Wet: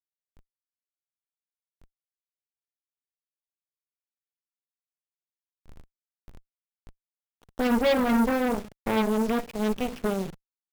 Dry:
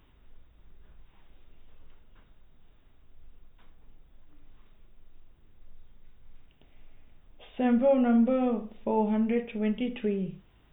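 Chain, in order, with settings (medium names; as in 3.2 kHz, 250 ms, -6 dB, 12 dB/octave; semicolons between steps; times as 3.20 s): send-on-delta sampling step -40 dBFS; Chebyshev shaper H 7 -32 dB, 8 -12 dB, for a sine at -14 dBFS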